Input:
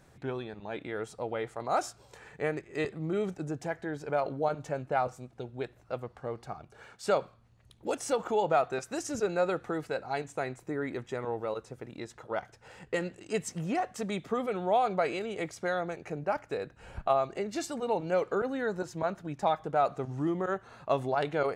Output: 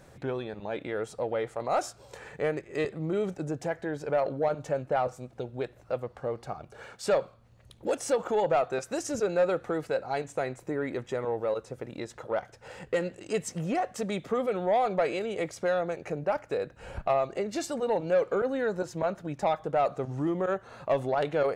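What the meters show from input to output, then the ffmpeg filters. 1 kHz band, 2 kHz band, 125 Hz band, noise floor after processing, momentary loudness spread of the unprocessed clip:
0.0 dB, +0.5 dB, +1.5 dB, −57 dBFS, 11 LU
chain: -filter_complex "[0:a]equalizer=frequency=540:width_type=o:width=0.44:gain=6,asplit=2[link_01][link_02];[link_02]acompressor=threshold=-41dB:ratio=6,volume=-2.5dB[link_03];[link_01][link_03]amix=inputs=2:normalize=0,asoftclip=type=tanh:threshold=-17dB"

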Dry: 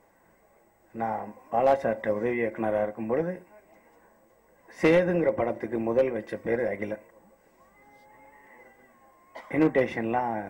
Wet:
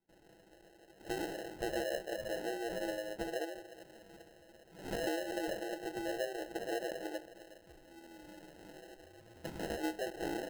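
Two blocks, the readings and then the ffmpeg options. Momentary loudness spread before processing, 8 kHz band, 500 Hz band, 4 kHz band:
12 LU, can't be measured, −12.5 dB, +2.0 dB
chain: -filter_complex "[0:a]highshelf=frequency=2700:gain=-10.5,aecho=1:1:6.1:0.4,acrossover=split=610|2700[link_01][link_02][link_03];[link_02]adelay=90[link_04];[link_01]adelay=230[link_05];[link_05][link_04][link_03]amix=inputs=3:normalize=0,acompressor=threshold=-40dB:ratio=4,afftfilt=real='re*between(b*sr/4096,310,3500)':imag='im*between(b*sr/4096,310,3500)':win_size=4096:overlap=0.75,asplit=2[link_06][link_07];[link_07]aecho=0:1:48|362:0.158|0.133[link_08];[link_06][link_08]amix=inputs=2:normalize=0,acrusher=samples=38:mix=1:aa=0.000001,adynamicequalizer=threshold=0.00158:dfrequency=1900:dqfactor=0.7:tfrequency=1900:tqfactor=0.7:attack=5:release=100:ratio=0.375:range=2:mode=cutabove:tftype=highshelf,volume=3dB"

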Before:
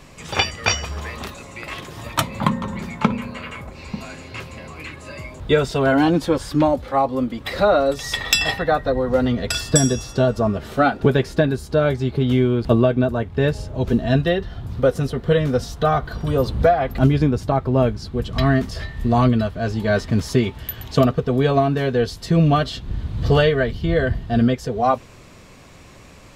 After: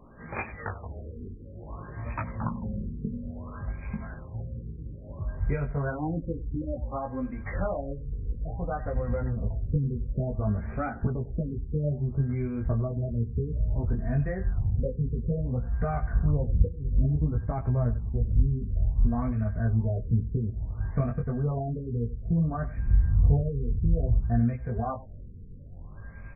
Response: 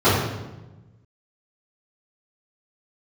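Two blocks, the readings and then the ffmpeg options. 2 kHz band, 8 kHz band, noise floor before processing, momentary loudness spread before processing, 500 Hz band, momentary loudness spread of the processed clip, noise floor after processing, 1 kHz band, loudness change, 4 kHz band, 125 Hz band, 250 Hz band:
−18.0 dB, below −40 dB, −44 dBFS, 15 LU, −16.5 dB, 13 LU, −43 dBFS, −16.0 dB, −10.0 dB, below −40 dB, −5.0 dB, −11.5 dB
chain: -filter_complex "[0:a]equalizer=frequency=230:width=4.3:gain=5.5,aeval=exprs='val(0)+0.00562*sin(2*PI*1600*n/s)':channel_layout=same,acompressor=threshold=-23dB:ratio=2.5,asubboost=boost=6.5:cutoff=110,flanger=delay=17:depth=4.2:speed=0.45,asplit=2[link_01][link_02];[link_02]aecho=0:1:94:0.15[link_03];[link_01][link_03]amix=inputs=2:normalize=0,afftfilt=real='re*lt(b*sr/1024,480*pow(2600/480,0.5+0.5*sin(2*PI*0.58*pts/sr)))':imag='im*lt(b*sr/1024,480*pow(2600/480,0.5+0.5*sin(2*PI*0.58*pts/sr)))':win_size=1024:overlap=0.75,volume=-4.5dB"

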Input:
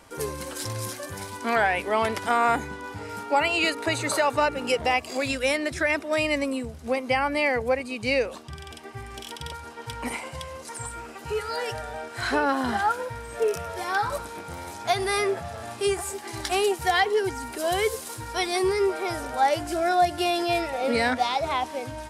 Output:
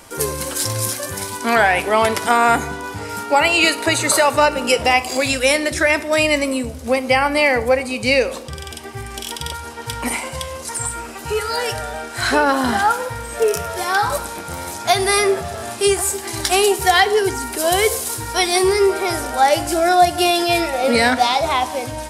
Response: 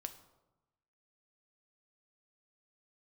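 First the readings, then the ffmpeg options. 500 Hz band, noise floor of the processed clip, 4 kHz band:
+8.0 dB, −32 dBFS, +10.0 dB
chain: -filter_complex "[0:a]asplit=2[link_01][link_02];[link_02]highshelf=frequency=4400:gain=12[link_03];[1:a]atrim=start_sample=2205[link_04];[link_03][link_04]afir=irnorm=-1:irlink=0,volume=4.5dB[link_05];[link_01][link_05]amix=inputs=2:normalize=0,volume=1dB"

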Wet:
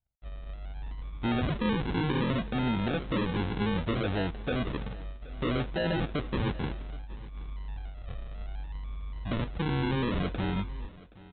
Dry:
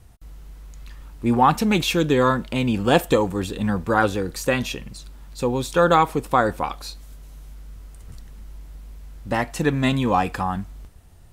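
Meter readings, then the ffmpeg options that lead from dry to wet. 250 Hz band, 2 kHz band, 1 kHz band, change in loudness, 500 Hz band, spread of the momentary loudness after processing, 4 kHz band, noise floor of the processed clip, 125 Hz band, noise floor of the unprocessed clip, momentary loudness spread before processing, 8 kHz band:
−7.5 dB, −10.0 dB, −15.5 dB, −11.0 dB, −12.0 dB, 14 LU, −8.5 dB, −49 dBFS, −4.5 dB, −47 dBFS, 15 LU, below −40 dB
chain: -af "agate=range=-40dB:threshold=-41dB:ratio=16:detection=peak,equalizer=frequency=1300:width=0.33:gain=-7.5,alimiter=limit=-18dB:level=0:latency=1:release=28,aeval=exprs='0.126*(cos(1*acos(clip(val(0)/0.126,-1,1)))-cos(1*PI/2))+0.0224*(cos(5*acos(clip(val(0)/0.126,-1,1)))-cos(5*PI/2))':channel_layout=same,aresample=8000,acrusher=samples=10:mix=1:aa=0.000001:lfo=1:lforange=6:lforate=0.64,aresample=44100,aecho=1:1:773:0.0944,volume=-3.5dB"

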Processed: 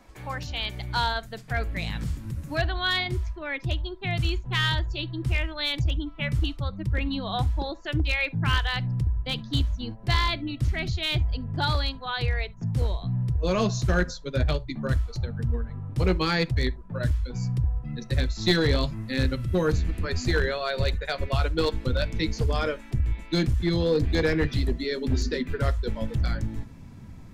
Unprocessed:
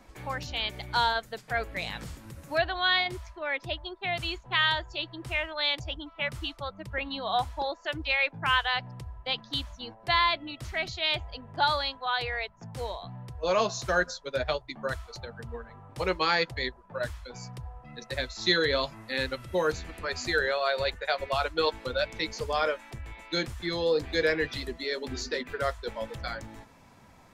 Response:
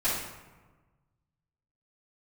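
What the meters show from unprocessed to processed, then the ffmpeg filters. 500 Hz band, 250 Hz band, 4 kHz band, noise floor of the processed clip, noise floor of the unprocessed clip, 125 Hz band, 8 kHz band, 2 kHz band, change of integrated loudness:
+0.5 dB, +9.5 dB, −0.5 dB, −44 dBFS, −55 dBFS, +15.5 dB, +1.0 dB, −1.0 dB, +2.5 dB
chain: -filter_complex "[0:a]asubboost=boost=7.5:cutoff=250,aeval=exprs='clip(val(0),-1,0.126)':channel_layout=same,asplit=2[link_01][link_02];[1:a]atrim=start_sample=2205,atrim=end_sample=3528[link_03];[link_02][link_03]afir=irnorm=-1:irlink=0,volume=-27.5dB[link_04];[link_01][link_04]amix=inputs=2:normalize=0"

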